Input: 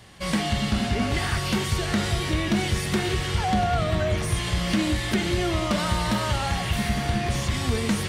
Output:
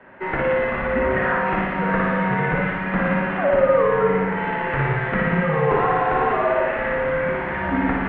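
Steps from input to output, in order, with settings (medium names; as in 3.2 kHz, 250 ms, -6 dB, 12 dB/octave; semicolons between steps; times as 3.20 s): mistuned SSB -180 Hz 350–2200 Hz; flutter echo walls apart 9.9 m, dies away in 1.2 s; trim +6.5 dB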